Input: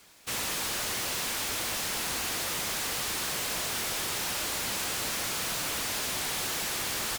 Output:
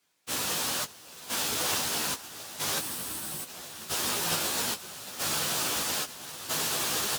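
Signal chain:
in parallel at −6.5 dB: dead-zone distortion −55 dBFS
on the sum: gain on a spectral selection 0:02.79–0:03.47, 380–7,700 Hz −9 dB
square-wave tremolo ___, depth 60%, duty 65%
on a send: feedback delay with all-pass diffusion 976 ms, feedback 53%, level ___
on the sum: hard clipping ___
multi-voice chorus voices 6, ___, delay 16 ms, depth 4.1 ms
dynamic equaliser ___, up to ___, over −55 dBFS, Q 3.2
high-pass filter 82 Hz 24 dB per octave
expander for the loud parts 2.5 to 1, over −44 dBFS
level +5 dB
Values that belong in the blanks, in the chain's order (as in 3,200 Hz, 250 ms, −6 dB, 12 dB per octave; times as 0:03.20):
0.77 Hz, −8 dB, −23.5 dBFS, 0.48 Hz, 2,100 Hz, −6 dB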